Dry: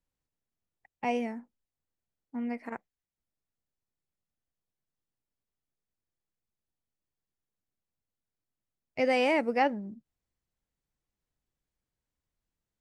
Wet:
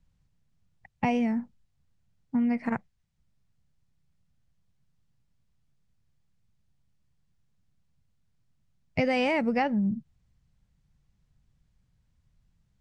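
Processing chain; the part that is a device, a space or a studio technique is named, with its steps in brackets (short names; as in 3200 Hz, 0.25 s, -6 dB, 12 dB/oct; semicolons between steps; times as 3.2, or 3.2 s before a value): jukebox (LPF 7100 Hz 12 dB/oct; resonant low shelf 230 Hz +12 dB, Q 1.5; compressor 6:1, threshold -32 dBFS, peak gain reduction 10.5 dB); gain +9 dB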